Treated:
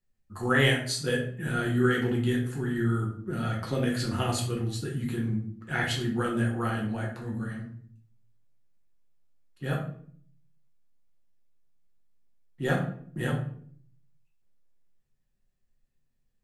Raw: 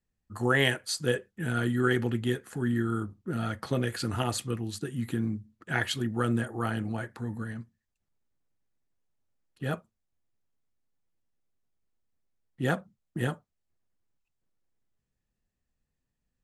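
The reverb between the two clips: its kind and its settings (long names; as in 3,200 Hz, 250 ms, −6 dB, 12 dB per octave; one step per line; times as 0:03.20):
rectangular room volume 67 cubic metres, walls mixed, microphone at 0.96 metres
level −3 dB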